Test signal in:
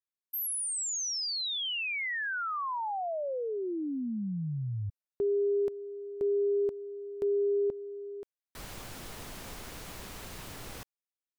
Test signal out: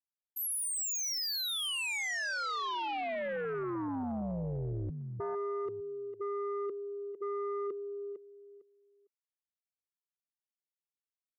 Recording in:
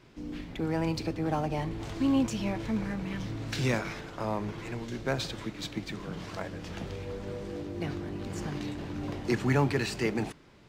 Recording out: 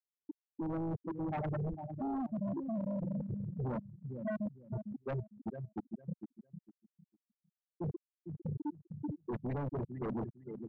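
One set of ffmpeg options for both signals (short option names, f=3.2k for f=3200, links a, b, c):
-filter_complex "[0:a]afftfilt=real='re*gte(hypot(re,im),0.178)':imag='im*gte(hypot(re,im),0.178)':win_size=1024:overlap=0.75,areverse,acompressor=threshold=-37dB:ratio=16:attack=0.28:release=128:knee=1:detection=peak,areverse,asplit=2[a][b];[b]adelay=454,lowpass=f=2.8k:p=1,volume=-11.5dB,asplit=2[c][d];[d]adelay=454,lowpass=f=2.8k:p=1,volume=0.2,asplit=2[e][f];[f]adelay=454,lowpass=f=2.8k:p=1,volume=0.2[g];[a][c][e][g]amix=inputs=4:normalize=0,aeval=exprs='0.0224*sin(PI/2*2.24*val(0)/0.0224)':c=same"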